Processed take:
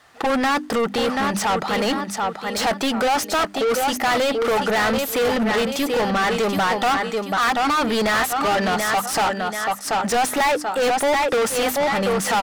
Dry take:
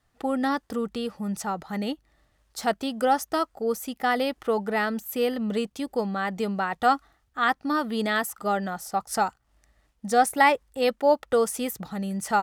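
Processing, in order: hum notches 50/100/150/200/250/300 Hz; feedback delay 734 ms, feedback 30%, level -10 dB; overdrive pedal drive 37 dB, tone 4.2 kHz, clips at -5 dBFS; trim -7 dB

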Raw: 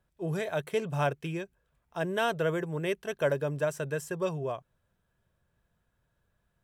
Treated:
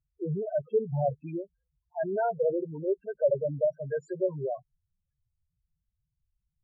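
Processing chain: spectral noise reduction 8 dB; low-pass that closes with the level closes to 1.8 kHz, closed at -27.5 dBFS; loudest bins only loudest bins 4; trim +4.5 dB

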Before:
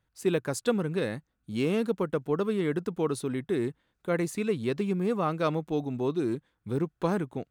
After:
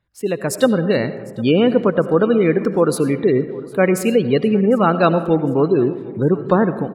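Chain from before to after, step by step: level rider gain up to 9.5 dB; spectral gate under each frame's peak -30 dB strong; tape speed +8%; feedback delay 754 ms, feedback 46%, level -23 dB; on a send at -12 dB: reverberation RT60 1.5 s, pre-delay 50 ms; on the sum: trim +3.5 dB

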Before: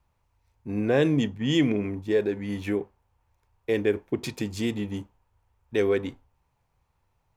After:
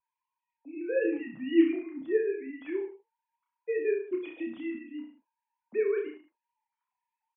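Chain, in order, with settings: formants replaced by sine waves; flange 1.5 Hz, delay 7.4 ms, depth 2.1 ms, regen +51%; dynamic bell 280 Hz, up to -4 dB, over -33 dBFS, Q 0.8; reverse bouncing-ball echo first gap 30 ms, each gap 1.1×, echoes 5; vibrato 0.34 Hz 11 cents

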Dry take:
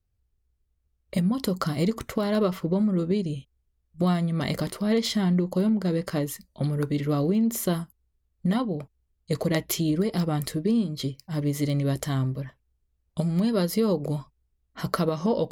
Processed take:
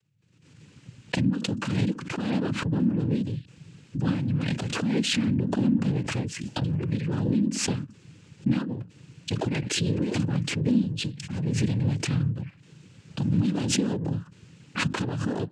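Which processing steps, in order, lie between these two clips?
noise-vocoded speech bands 8; FFT filter 210 Hz 0 dB, 720 Hz -13 dB, 2.6 kHz -1 dB, 4.7 kHz -7 dB; swell ahead of each attack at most 44 dB/s

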